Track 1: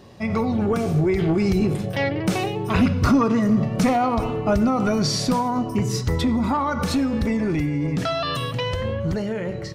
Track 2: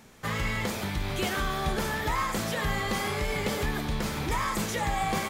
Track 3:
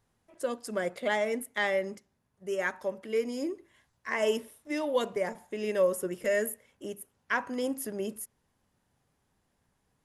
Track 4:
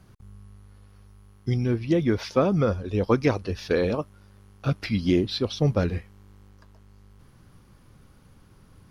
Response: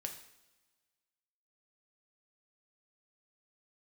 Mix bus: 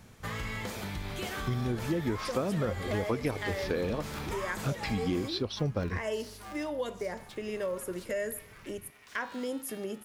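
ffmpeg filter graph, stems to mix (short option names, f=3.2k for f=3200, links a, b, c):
-filter_complex "[0:a]highpass=f=930:w=0.5412,highpass=f=930:w=1.3066,aeval=exprs='clip(val(0),-1,0.0251)':c=same,aeval=exprs='val(0)*sgn(sin(2*PI*210*n/s))':c=same,adelay=1100,volume=-16dB,asplit=2[a][b];[b]volume=-16.5dB[c];[1:a]volume=-7dB,asplit=2[d][e];[e]volume=-4.5dB[f];[2:a]adelay=1850,volume=2.5dB,asplit=2[g][h];[h]volume=-15dB[i];[3:a]volume=-2.5dB[j];[a][d][g]amix=inputs=3:normalize=0,acompressor=threshold=-41dB:ratio=2,volume=0dB[k];[4:a]atrim=start_sample=2205[l];[c][f][i]amix=inputs=3:normalize=0[m];[m][l]afir=irnorm=-1:irlink=0[n];[j][k][n]amix=inputs=3:normalize=0,acompressor=threshold=-29dB:ratio=3"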